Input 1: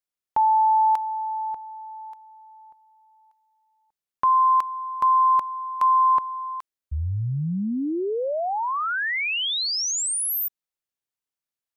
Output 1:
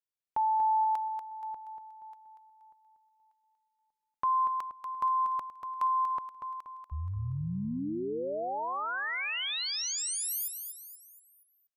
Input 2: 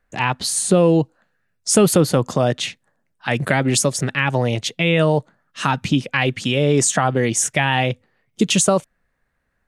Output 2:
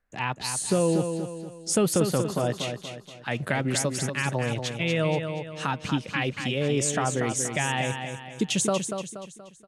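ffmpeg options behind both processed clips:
-af "aecho=1:1:238|476|714|952|1190:0.447|0.192|0.0826|0.0355|0.0153,volume=0.355"

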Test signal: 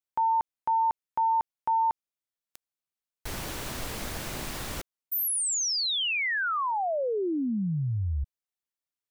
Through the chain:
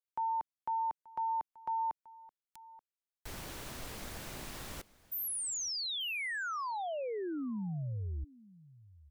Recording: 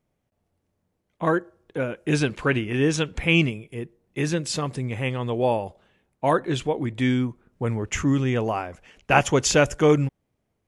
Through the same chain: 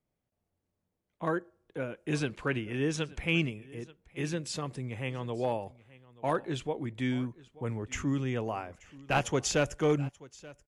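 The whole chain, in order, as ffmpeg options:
-filter_complex "[0:a]acrossover=split=310|3000[s0][s1][s2];[s1]aeval=exprs='clip(val(0),-1,0.188)':c=same[s3];[s0][s3][s2]amix=inputs=3:normalize=0,aecho=1:1:881:0.0891,volume=0.355"

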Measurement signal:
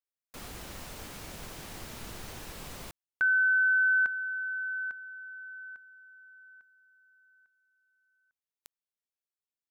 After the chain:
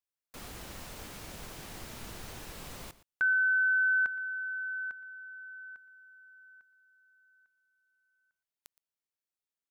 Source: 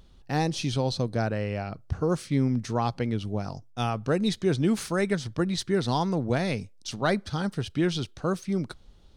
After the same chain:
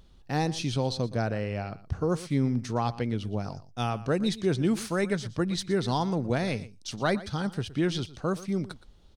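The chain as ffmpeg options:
-af "aecho=1:1:118:0.141,volume=0.841"

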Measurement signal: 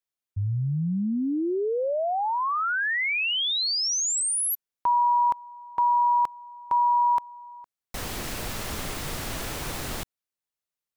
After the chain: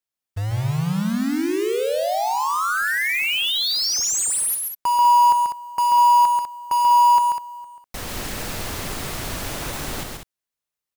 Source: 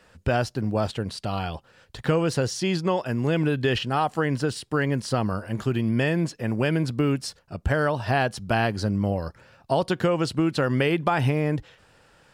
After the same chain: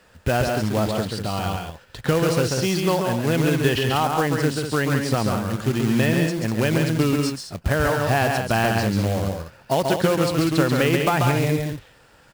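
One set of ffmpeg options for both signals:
-filter_complex "[0:a]acrusher=bits=3:mode=log:mix=0:aa=0.000001,asplit=2[s0][s1];[s1]aecho=0:1:137|198.3:0.631|0.398[s2];[s0][s2]amix=inputs=2:normalize=0,volume=1.19"

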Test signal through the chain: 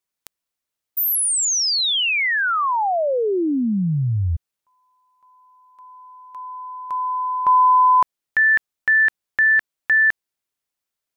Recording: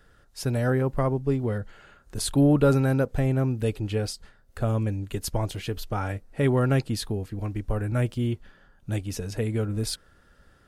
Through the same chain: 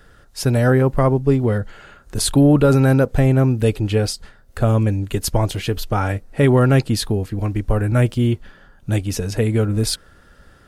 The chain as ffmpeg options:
-af "alimiter=level_in=4.22:limit=0.891:release=50:level=0:latency=1,volume=0.668"

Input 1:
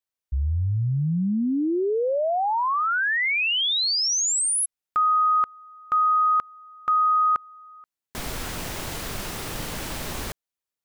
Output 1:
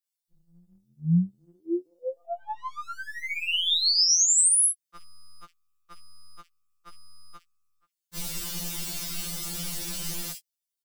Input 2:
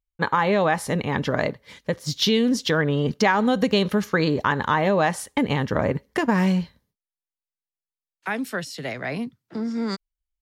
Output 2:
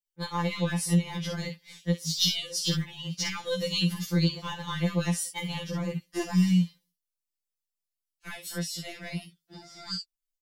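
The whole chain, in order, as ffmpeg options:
-filter_complex "[0:a]tiltshelf=f=1400:g=-8.5,acrossover=split=290|1000|2700[s0][s1][s2][s3];[s0]dynaudnorm=f=170:g=5:m=4.22[s4];[s2]aeval=exprs='(tanh(89.1*val(0)+0.8)-tanh(0.8))/89.1':c=same[s5];[s3]aecho=1:1:13|53|65:0.631|0.596|0.316[s6];[s4][s1][s5][s6]amix=inputs=4:normalize=0,afftfilt=real='re*2.83*eq(mod(b,8),0)':imag='im*2.83*eq(mod(b,8),0)':win_size=2048:overlap=0.75,volume=0.531"

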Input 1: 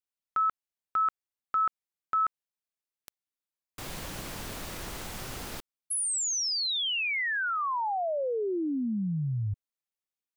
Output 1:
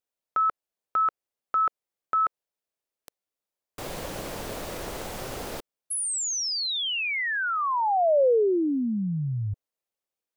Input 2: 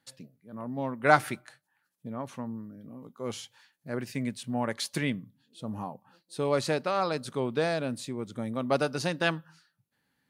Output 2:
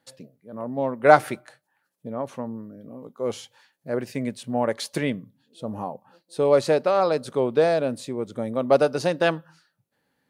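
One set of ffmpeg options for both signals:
-af "equalizer=f=530:t=o:w=1.4:g=9.5,volume=1.12"

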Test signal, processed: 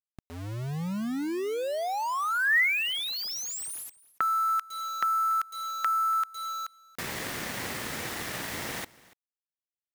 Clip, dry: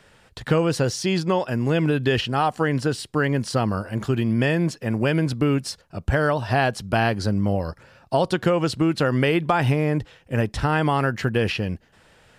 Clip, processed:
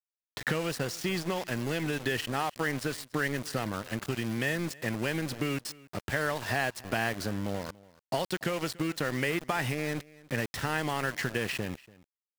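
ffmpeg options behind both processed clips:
-filter_complex "[0:a]acrossover=split=2400|6300[s0][s1][s2];[s0]acompressor=threshold=0.0316:ratio=4[s3];[s1]acompressor=threshold=0.00794:ratio=4[s4];[s2]acompressor=threshold=0.00794:ratio=4[s5];[s3][s4][s5]amix=inputs=3:normalize=0,highpass=120,equalizer=f=1900:t=o:w=0.44:g=8,aeval=exprs='val(0)*gte(abs(val(0)),0.0178)':c=same,asplit=2[s6][s7];[s7]aecho=0:1:287:0.0794[s8];[s6][s8]amix=inputs=2:normalize=0"

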